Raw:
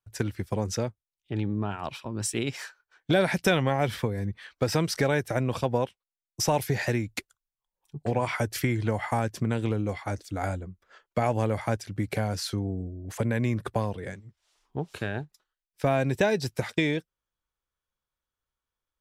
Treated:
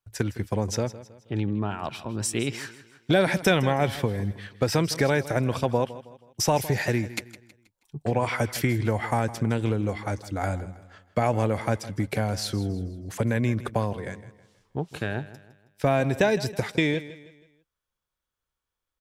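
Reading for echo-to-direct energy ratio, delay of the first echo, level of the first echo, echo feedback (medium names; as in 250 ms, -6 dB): -15.5 dB, 160 ms, -16.0 dB, 40%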